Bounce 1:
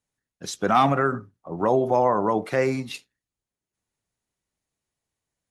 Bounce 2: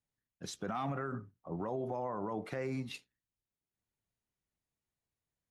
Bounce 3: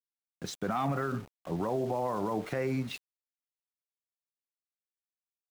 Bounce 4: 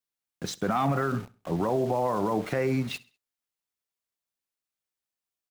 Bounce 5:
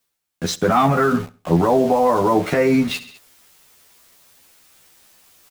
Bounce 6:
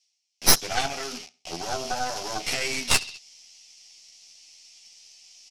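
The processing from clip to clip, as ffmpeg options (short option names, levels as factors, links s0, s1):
-af "bass=f=250:g=4,treble=f=4000:g=-4,acompressor=threshold=0.0794:ratio=6,alimiter=limit=0.1:level=0:latency=1:release=17,volume=0.376"
-af "highshelf=f=6900:g=-6.5,aeval=exprs='val(0)*gte(abs(val(0)),0.00282)':c=same,volume=2"
-af "aecho=1:1:66|132|198:0.0891|0.033|0.0122,volume=1.78"
-filter_complex "[0:a]areverse,acompressor=mode=upward:threshold=0.00891:ratio=2.5,areverse,asplit=2[s0][s1];[s1]adelay=12,volume=0.794[s2];[s0][s2]amix=inputs=2:normalize=0,volume=2.66"
-af "highpass=360,equalizer=f=480:t=q:w=4:g=-8,equalizer=f=740:t=q:w=4:g=9,equalizer=f=1100:t=q:w=4:g=-8,equalizer=f=1600:t=q:w=4:g=-9,equalizer=f=3700:t=q:w=4:g=-7,equalizer=f=5500:t=q:w=4:g=7,lowpass=f=6000:w=0.5412,lowpass=f=6000:w=1.3066,aexciter=amount=8.9:drive=7:freq=2100,aeval=exprs='3.16*(cos(1*acos(clip(val(0)/3.16,-1,1)))-cos(1*PI/2))+1.26*(cos(6*acos(clip(val(0)/3.16,-1,1)))-cos(6*PI/2))':c=same,volume=0.168"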